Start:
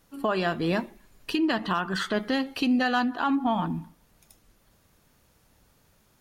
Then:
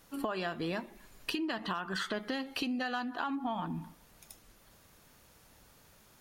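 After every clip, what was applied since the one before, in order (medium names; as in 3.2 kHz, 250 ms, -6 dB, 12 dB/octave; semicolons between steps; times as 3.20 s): bass shelf 380 Hz -5 dB; compression 6:1, threshold -37 dBFS, peak gain reduction 14.5 dB; trim +4 dB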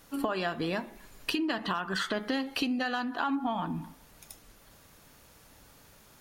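reverberation RT60 0.55 s, pre-delay 4 ms, DRR 15 dB; trim +4 dB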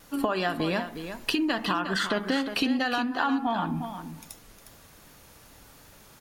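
delay 358 ms -9.5 dB; vibrato 2.6 Hz 34 cents; trim +4 dB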